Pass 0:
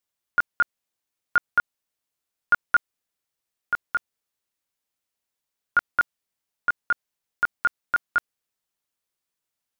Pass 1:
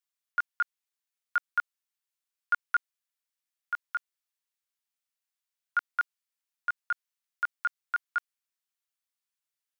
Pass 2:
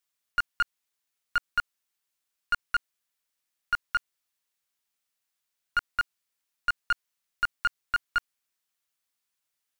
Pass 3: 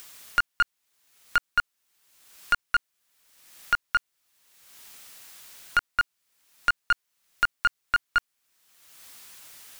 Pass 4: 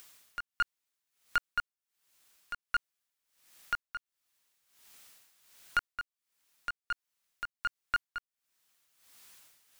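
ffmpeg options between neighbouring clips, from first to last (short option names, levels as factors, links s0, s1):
-af "highpass=1100,volume=0.531"
-af "alimiter=limit=0.0708:level=0:latency=1,aeval=exprs='clip(val(0),-1,0.0355)':c=same,volume=2.11"
-af "acompressor=mode=upward:threshold=0.0447:ratio=2.5,volume=1.5"
-filter_complex "[0:a]asplit=2[s0][s1];[s1]aeval=exprs='val(0)*gte(abs(val(0)),0.0168)':c=same,volume=0.376[s2];[s0][s2]amix=inputs=2:normalize=0,tremolo=f=1.4:d=0.74,volume=0.376"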